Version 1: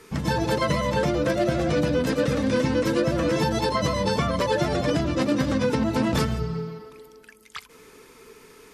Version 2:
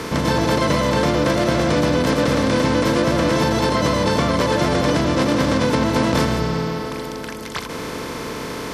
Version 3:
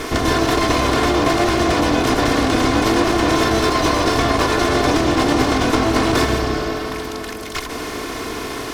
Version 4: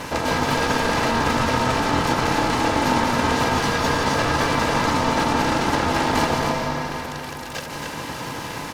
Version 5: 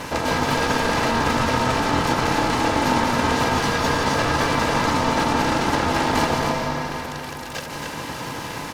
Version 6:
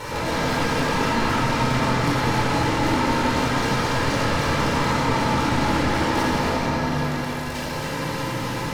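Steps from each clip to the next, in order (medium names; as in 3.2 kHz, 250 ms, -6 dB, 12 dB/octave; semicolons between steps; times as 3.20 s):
spectral levelling over time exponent 0.4
comb filter that takes the minimum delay 2.8 ms; trim +3.5 dB
ring modulator 580 Hz; on a send: loudspeakers at several distances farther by 61 m -10 dB, 94 m -5 dB; on the sum: trim -2.5 dB
no audible change
saturation -22 dBFS, distortion -8 dB; simulated room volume 1900 m³, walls mixed, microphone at 4.5 m; trim -4 dB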